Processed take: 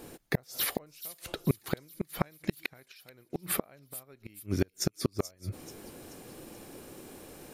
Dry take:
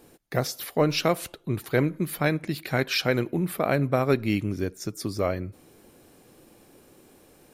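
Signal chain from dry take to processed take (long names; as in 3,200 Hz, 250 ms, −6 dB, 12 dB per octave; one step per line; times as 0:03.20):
dynamic equaliser 230 Hz, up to −4 dB, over −34 dBFS, Q 0.72
gate with flip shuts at −20 dBFS, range −37 dB
delay with a high-pass on its return 432 ms, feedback 49%, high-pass 5,100 Hz, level −10 dB
level +6.5 dB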